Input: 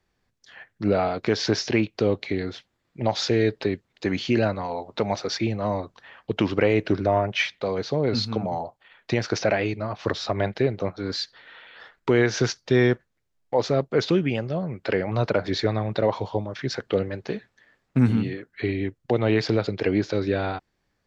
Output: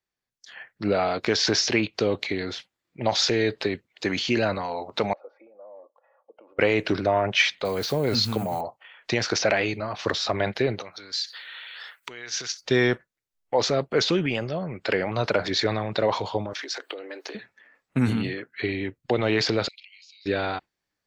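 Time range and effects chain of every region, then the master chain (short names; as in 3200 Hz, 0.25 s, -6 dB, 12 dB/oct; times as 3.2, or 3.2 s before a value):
5.13–6.59 comb 3.6 ms, depth 37% + compressor 2:1, threshold -45 dBFS + ladder band-pass 600 Hz, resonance 60%
7.65–8.61 level-crossing sampler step -46 dBFS + low shelf 150 Hz +6.5 dB
10.81–12.61 compressor 3:1, threshold -40 dBFS + tilt shelf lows -8 dB, about 1200 Hz
16.53–17.35 high shelf 4800 Hz +6.5 dB + compressor 8:1, threshold -30 dBFS + elliptic high-pass 290 Hz
19.68–20.26 steep high-pass 2400 Hz 48 dB/oct + compressor 8:1, threshold -53 dBFS
whole clip: spectral noise reduction 15 dB; tilt +2 dB/oct; transient shaper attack +2 dB, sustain +6 dB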